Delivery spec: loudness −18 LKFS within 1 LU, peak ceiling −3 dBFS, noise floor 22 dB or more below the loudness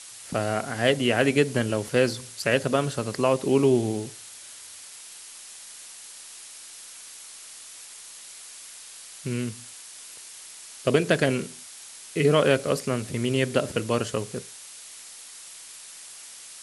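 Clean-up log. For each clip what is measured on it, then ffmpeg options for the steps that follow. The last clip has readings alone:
background noise floor −44 dBFS; target noise floor −47 dBFS; integrated loudness −25.0 LKFS; sample peak −6.0 dBFS; target loudness −18.0 LKFS
→ -af "afftdn=noise_reduction=6:noise_floor=-44"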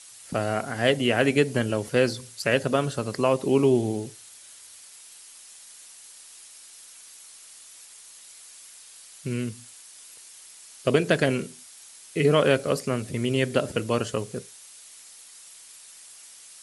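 background noise floor −48 dBFS; integrated loudness −25.0 LKFS; sample peak −6.0 dBFS; target loudness −18.0 LKFS
→ -af "volume=7dB,alimiter=limit=-3dB:level=0:latency=1"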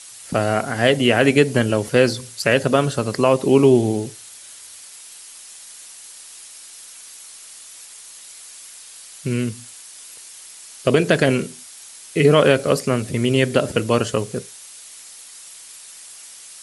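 integrated loudness −18.5 LKFS; sample peak −3.0 dBFS; background noise floor −41 dBFS

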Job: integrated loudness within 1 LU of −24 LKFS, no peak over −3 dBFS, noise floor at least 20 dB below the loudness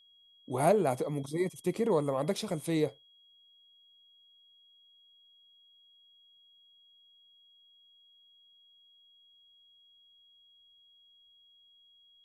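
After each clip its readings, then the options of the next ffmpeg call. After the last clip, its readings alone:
interfering tone 3,300 Hz; level of the tone −60 dBFS; integrated loudness −31.0 LKFS; sample peak −13.5 dBFS; target loudness −24.0 LKFS
→ -af "bandreject=frequency=3300:width=30"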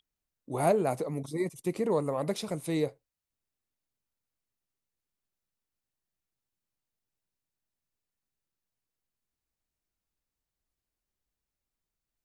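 interfering tone none found; integrated loudness −31.0 LKFS; sample peak −13.5 dBFS; target loudness −24.0 LKFS
→ -af "volume=7dB"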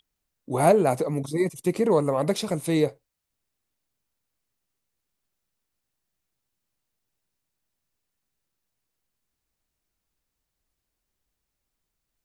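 integrated loudness −24.0 LKFS; sample peak −6.5 dBFS; background noise floor −82 dBFS

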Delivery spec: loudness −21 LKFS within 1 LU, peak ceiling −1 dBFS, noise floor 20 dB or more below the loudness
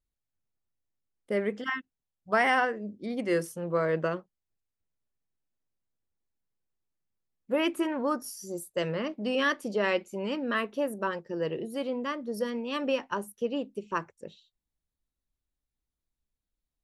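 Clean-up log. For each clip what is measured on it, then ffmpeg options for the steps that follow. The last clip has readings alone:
integrated loudness −30.5 LKFS; sample peak −14.0 dBFS; target loudness −21.0 LKFS
→ -af "volume=9.5dB"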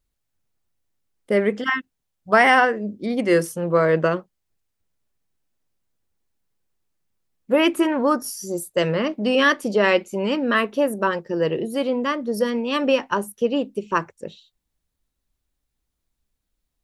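integrated loudness −21.0 LKFS; sample peak −4.5 dBFS; background noise floor −79 dBFS

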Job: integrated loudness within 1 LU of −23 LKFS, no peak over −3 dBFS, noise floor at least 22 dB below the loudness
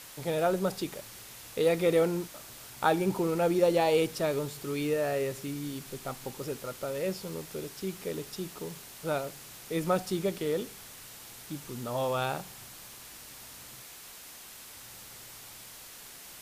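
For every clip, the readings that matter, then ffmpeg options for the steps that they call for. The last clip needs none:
background noise floor −48 dBFS; target noise floor −53 dBFS; integrated loudness −31.0 LKFS; sample peak −10.0 dBFS; target loudness −23.0 LKFS
→ -af "afftdn=noise_reduction=6:noise_floor=-48"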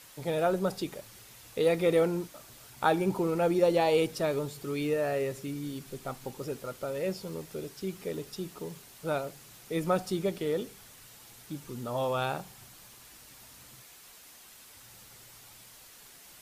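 background noise floor −53 dBFS; integrated loudness −31.0 LKFS; sample peak −10.0 dBFS; target loudness −23.0 LKFS
→ -af "volume=8dB,alimiter=limit=-3dB:level=0:latency=1"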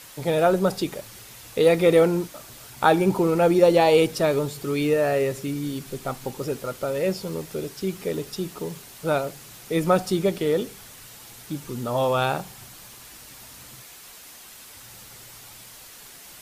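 integrated loudness −23.0 LKFS; sample peak −3.0 dBFS; background noise floor −45 dBFS

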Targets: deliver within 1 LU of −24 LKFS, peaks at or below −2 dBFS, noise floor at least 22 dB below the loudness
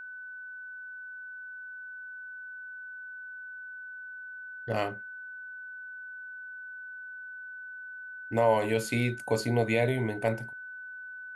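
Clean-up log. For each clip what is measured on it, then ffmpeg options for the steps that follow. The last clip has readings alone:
interfering tone 1,500 Hz; level of the tone −40 dBFS; integrated loudness −34.0 LKFS; sample peak −12.0 dBFS; target loudness −24.0 LKFS
→ -af "bandreject=frequency=1500:width=30"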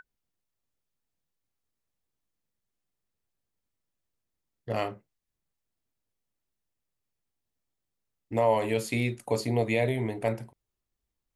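interfering tone none found; integrated loudness −29.0 LKFS; sample peak −12.0 dBFS; target loudness −24.0 LKFS
→ -af "volume=5dB"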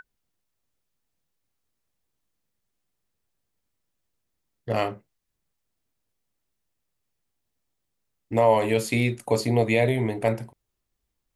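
integrated loudness −24.0 LKFS; sample peak −7.0 dBFS; background noise floor −80 dBFS

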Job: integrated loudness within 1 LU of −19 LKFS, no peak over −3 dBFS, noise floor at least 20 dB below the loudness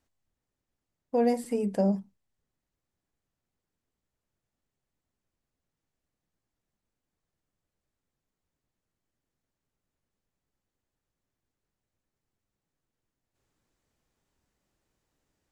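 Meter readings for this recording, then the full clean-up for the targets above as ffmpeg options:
integrated loudness −28.5 LKFS; sample peak −15.0 dBFS; target loudness −19.0 LKFS
→ -af "volume=9.5dB"

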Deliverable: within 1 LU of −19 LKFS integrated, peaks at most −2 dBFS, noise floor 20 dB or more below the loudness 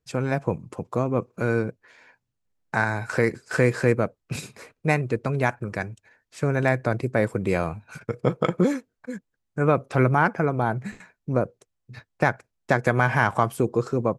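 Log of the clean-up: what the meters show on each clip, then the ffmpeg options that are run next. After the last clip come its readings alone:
integrated loudness −25.0 LKFS; sample peak −5.0 dBFS; target loudness −19.0 LKFS
→ -af "volume=6dB,alimiter=limit=-2dB:level=0:latency=1"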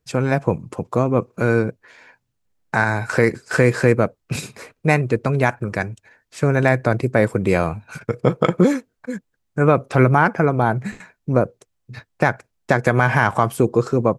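integrated loudness −19.5 LKFS; sample peak −2.0 dBFS; background noise floor −73 dBFS

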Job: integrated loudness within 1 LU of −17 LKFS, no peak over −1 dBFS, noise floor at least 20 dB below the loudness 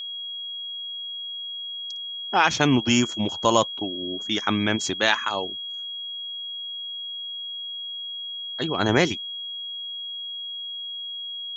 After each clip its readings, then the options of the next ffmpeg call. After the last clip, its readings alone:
interfering tone 3,300 Hz; level of the tone −31 dBFS; integrated loudness −26.0 LKFS; sample peak −3.0 dBFS; target loudness −17.0 LKFS
→ -af "bandreject=frequency=3300:width=30"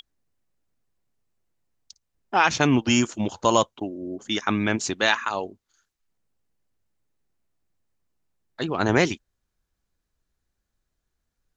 interfering tone none found; integrated loudness −23.5 LKFS; sample peak −3.5 dBFS; target loudness −17.0 LKFS
→ -af "volume=6.5dB,alimiter=limit=-1dB:level=0:latency=1"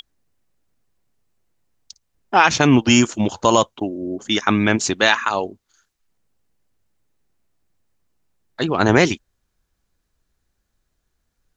integrated loudness −17.5 LKFS; sample peak −1.0 dBFS; background noise floor −74 dBFS

